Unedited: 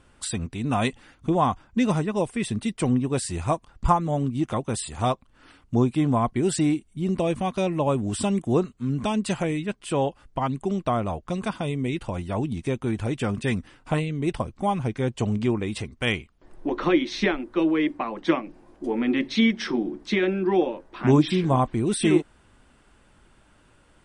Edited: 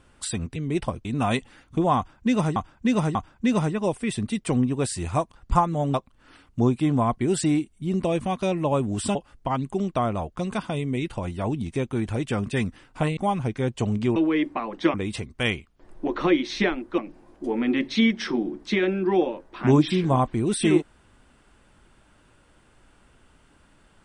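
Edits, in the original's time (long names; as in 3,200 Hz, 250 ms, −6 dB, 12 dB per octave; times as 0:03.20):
0:01.48–0:02.07: repeat, 3 plays
0:04.27–0:05.09: remove
0:08.30–0:10.06: remove
0:14.08–0:14.57: move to 0:00.56
0:17.60–0:18.38: move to 0:15.56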